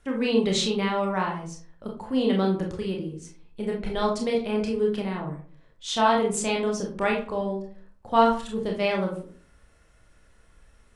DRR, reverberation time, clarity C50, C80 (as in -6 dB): -1.0 dB, 0.45 s, 7.0 dB, 12.0 dB